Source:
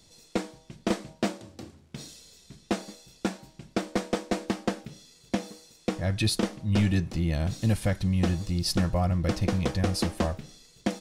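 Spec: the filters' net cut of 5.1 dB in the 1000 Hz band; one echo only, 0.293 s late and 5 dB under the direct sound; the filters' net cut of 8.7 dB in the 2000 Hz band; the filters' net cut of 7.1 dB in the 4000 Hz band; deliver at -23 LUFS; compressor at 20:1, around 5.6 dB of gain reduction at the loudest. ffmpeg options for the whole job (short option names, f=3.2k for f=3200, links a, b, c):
-af "equalizer=f=1k:t=o:g=-6,equalizer=f=2k:t=o:g=-7.5,equalizer=f=4k:t=o:g=-7,acompressor=threshold=-26dB:ratio=20,aecho=1:1:293:0.562,volume=10.5dB"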